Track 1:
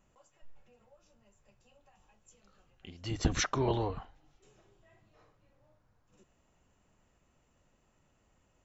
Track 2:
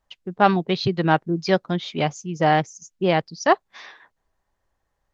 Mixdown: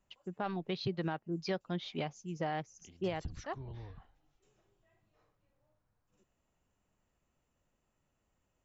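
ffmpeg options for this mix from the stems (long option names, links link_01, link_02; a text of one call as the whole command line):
ffmpeg -i stem1.wav -i stem2.wav -filter_complex "[0:a]acrossover=split=170[link_01][link_02];[link_02]acompressor=threshold=-44dB:ratio=10[link_03];[link_01][link_03]amix=inputs=2:normalize=0,volume=-9dB[link_04];[1:a]lowpass=6400,volume=-11dB,afade=type=out:start_time=2.93:duration=0.42:silence=0.223872[link_05];[link_04][link_05]amix=inputs=2:normalize=0,alimiter=level_in=0.5dB:limit=-24dB:level=0:latency=1:release=291,volume=-0.5dB" out.wav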